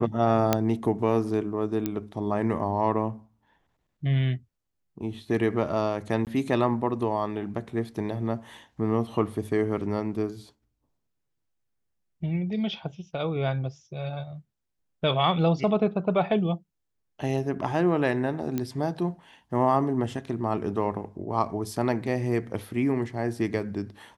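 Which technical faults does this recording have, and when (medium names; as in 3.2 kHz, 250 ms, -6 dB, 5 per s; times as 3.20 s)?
0.53 s: pop -6 dBFS
1.86 s: pop -14 dBFS
6.25–6.27 s: dropout 18 ms
18.58 s: pop -15 dBFS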